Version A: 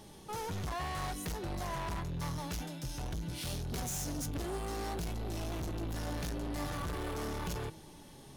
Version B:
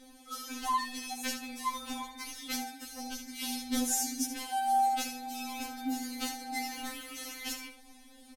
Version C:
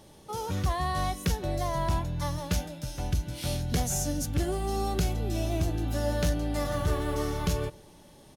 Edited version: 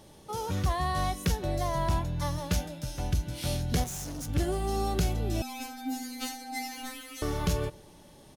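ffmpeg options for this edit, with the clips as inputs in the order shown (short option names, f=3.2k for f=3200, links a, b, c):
-filter_complex "[2:a]asplit=3[a][b][c];[a]atrim=end=3.842[d];[0:a]atrim=start=3.838:end=4.292[e];[b]atrim=start=4.288:end=5.422[f];[1:a]atrim=start=5.418:end=7.222[g];[c]atrim=start=7.218[h];[d][e]acrossfade=d=0.004:c1=hsin:c2=hsin[i];[i][f]acrossfade=d=0.004:c1=hsin:c2=hsin[j];[j][g]acrossfade=d=0.004:c1=hsin:c2=hsin[k];[k][h]acrossfade=d=0.004:c1=hsin:c2=hsin"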